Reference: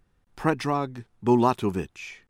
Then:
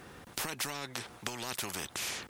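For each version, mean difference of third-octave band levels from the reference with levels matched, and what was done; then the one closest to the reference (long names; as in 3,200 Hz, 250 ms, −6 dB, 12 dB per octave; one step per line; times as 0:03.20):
17.5 dB: high-pass filter 120 Hz 12 dB per octave
brickwall limiter −13 dBFS, peak gain reduction 6 dB
downward compressor, threshold −33 dBFS, peak gain reduction 13.5 dB
every bin compressed towards the loudest bin 4 to 1
level +7.5 dB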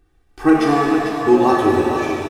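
10.5 dB: parametric band 310 Hz +8 dB 0.28 octaves
comb filter 2.6 ms, depth 98%
single-tap delay 446 ms −8.5 dB
reverb with rising layers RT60 1.9 s, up +7 semitones, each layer −8 dB, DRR −2 dB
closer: second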